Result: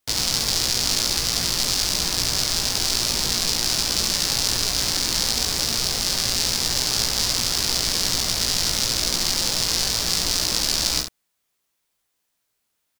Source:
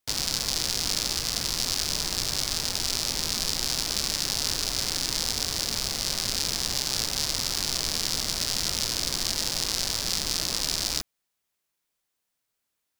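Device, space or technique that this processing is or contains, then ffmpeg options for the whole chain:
slapback doubling: -filter_complex "[0:a]asplit=3[s0][s1][s2];[s1]adelay=17,volume=0.562[s3];[s2]adelay=69,volume=0.447[s4];[s0][s3][s4]amix=inputs=3:normalize=0,volume=1.58"

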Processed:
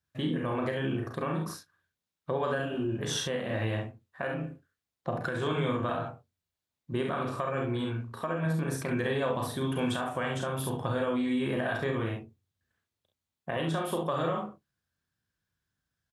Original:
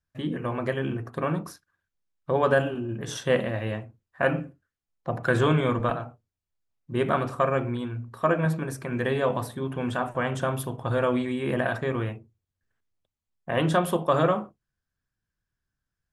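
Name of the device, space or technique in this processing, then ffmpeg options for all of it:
broadcast voice chain: -filter_complex "[0:a]asettb=1/sr,asplit=3[s0][s1][s2];[s0]atrim=end=9.544[s3];[s1]atrim=start=9.54:end=10.33,asetpts=PTS-STARTPTS,afade=t=in:d=0.004:c=qsin,afade=t=out:st=0.786:d=0.004:c=qsin,highshelf=f=3700:g=9[s4];[s2]atrim=start=10.326[s5];[s3][s4]acrossfade=d=0.004:c1=hsin:c2=qsin[s6];[s6][s5]acrossfade=d=0.004:c1=qsin:c2=hsin,highpass=70,aecho=1:1:36|48|67:0.531|0.422|0.447,deesser=0.5,acompressor=threshold=0.0501:ratio=4,equalizer=f=3700:t=o:w=0.6:g=4,alimiter=limit=0.112:level=0:latency=1:release=298"

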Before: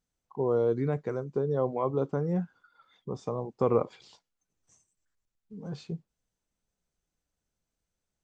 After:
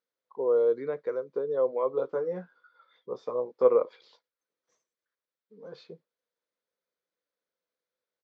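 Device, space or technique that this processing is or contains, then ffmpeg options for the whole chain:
phone earpiece: -filter_complex "[0:a]asplit=3[s0][s1][s2];[s0]afade=t=out:st=1.91:d=0.02[s3];[s1]asplit=2[s4][s5];[s5]adelay=16,volume=0.631[s6];[s4][s6]amix=inputs=2:normalize=0,afade=t=in:st=1.91:d=0.02,afade=t=out:st=3.68:d=0.02[s7];[s2]afade=t=in:st=3.68:d=0.02[s8];[s3][s7][s8]amix=inputs=3:normalize=0,highpass=480,equalizer=f=500:t=q:w=4:g=9,equalizer=f=770:t=q:w=4:g=-9,equalizer=f=2800:t=q:w=4:g=-8,lowpass=f=4400:w=0.5412,lowpass=f=4400:w=1.3066"

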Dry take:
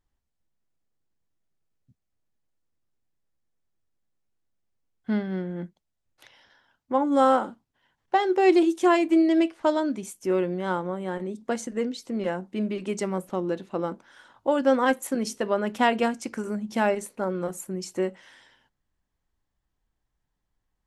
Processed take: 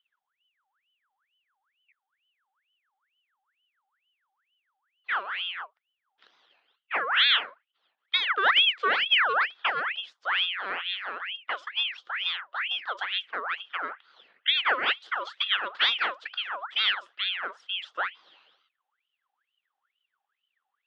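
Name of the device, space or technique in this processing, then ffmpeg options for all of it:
voice changer toy: -af "aeval=exprs='val(0)*sin(2*PI*1900*n/s+1900*0.6/2.2*sin(2*PI*2.2*n/s))':c=same,highpass=590,equalizer=f=630:t=q:w=4:g=-4,equalizer=f=950:t=q:w=4:g=-4,equalizer=f=1400:t=q:w=4:g=3,equalizer=f=2300:t=q:w=4:g=-6,equalizer=f=3300:t=q:w=4:g=7,lowpass=f=3600:w=0.5412,lowpass=f=3600:w=1.3066"

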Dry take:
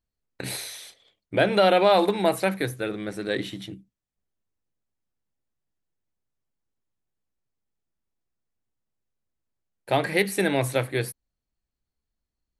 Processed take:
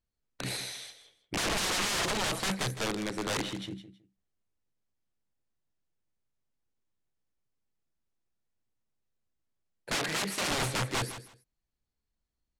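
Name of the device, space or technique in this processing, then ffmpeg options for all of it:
overflowing digital effects unit: -filter_complex "[0:a]aeval=exprs='(mod(14.1*val(0)+1,2)-1)/14.1':c=same,lowpass=8600,asettb=1/sr,asplit=3[s0][s1][s2];[s0]atrim=end=9.954[s3];[s1]atrim=start=9.95:end=10.51,asetpts=PTS-STARTPTS,afade=t=in:d=0.004:c=qsin,afade=t=out:st=0.556:d=0.004:c=qsin,highpass=f=160:p=1[s4];[s2]atrim=start=10.506[s5];[s3][s4]acrossfade=d=0.004:c1=hsin:c2=qsin[s6];[s6][s5]acrossfade=d=0.004:c1=qsin:c2=hsin,aecho=1:1:160|320:0.237|0.0451,volume=0.841"

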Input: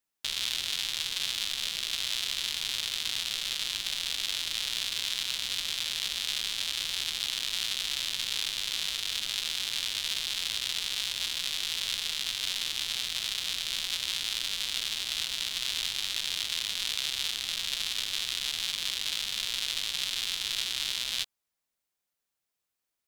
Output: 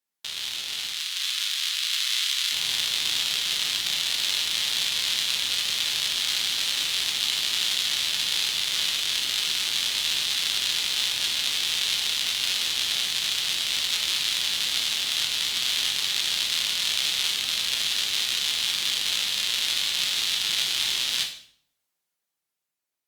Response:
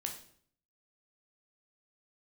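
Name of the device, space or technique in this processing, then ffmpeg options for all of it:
far-field microphone of a smart speaker: -filter_complex "[0:a]asettb=1/sr,asplit=3[s0][s1][s2];[s0]atrim=end=0.934[s3];[s1]atrim=start=0.93:end=2.52,asetpts=PTS-STARTPTS,afade=t=in:d=0.004:c=qsin,afade=t=out:st=1.586:d=0.004:c=qsin,highpass=f=1100:w=0.5412,highpass=f=1100:w=1.3066[s4];[s2]atrim=start=2.516[s5];[s3][s4]acrossfade=d=0.004:c1=hsin:c2=qsin[s6];[s6][s5]acrossfade=d=0.004:c1=qsin:c2=hsin[s7];[1:a]atrim=start_sample=2205[s8];[s7][s8]afir=irnorm=-1:irlink=0,highpass=f=130:p=1,dynaudnorm=f=120:g=21:m=2.24" -ar 48000 -c:a libopus -b:a 48k

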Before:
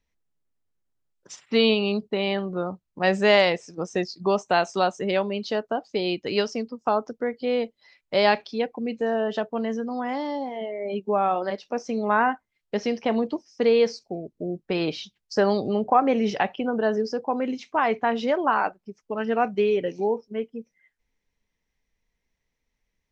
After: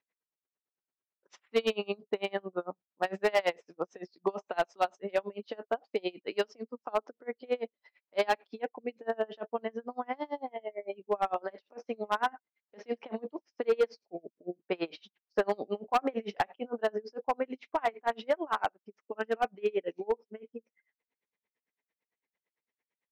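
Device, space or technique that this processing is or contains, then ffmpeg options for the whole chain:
helicopter radio: -af "highpass=340,lowpass=2700,aeval=exprs='val(0)*pow(10,-32*(0.5-0.5*cos(2*PI*8.9*n/s))/20)':c=same,asoftclip=type=hard:threshold=0.106"

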